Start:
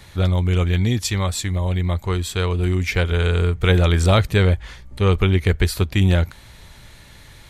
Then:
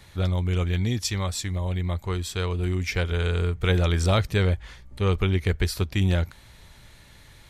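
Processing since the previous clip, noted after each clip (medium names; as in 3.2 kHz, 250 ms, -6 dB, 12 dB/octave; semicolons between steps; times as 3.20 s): dynamic bell 5.4 kHz, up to +6 dB, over -48 dBFS, Q 3.5; trim -6 dB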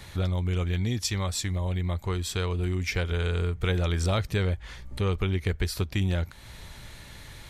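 compression 2:1, threshold -36 dBFS, peak gain reduction 10.5 dB; trim +5.5 dB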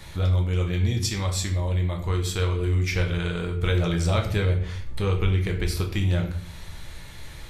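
simulated room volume 86 m³, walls mixed, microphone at 0.63 m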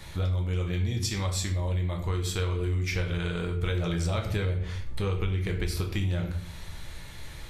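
compression 4:1, threshold -23 dBFS, peak gain reduction 6 dB; trim -1.5 dB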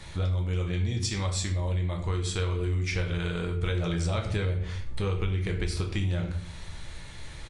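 resampled via 22.05 kHz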